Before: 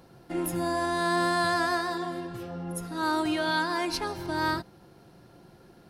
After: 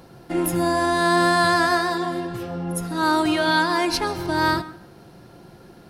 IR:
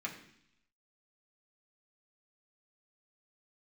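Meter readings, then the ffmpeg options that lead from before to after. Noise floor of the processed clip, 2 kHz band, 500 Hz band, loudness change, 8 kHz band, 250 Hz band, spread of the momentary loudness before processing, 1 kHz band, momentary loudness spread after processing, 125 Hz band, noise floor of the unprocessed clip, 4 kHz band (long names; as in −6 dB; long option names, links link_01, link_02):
−48 dBFS, +7.5 dB, +7.5 dB, +7.5 dB, +7.5 dB, +7.5 dB, 11 LU, +7.5 dB, 11 LU, +8.0 dB, −55 dBFS, +7.5 dB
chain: -filter_complex "[0:a]asplit=2[link_01][link_02];[1:a]atrim=start_sample=2205,adelay=134[link_03];[link_02][link_03]afir=irnorm=-1:irlink=0,volume=-18.5dB[link_04];[link_01][link_04]amix=inputs=2:normalize=0,volume=7.5dB"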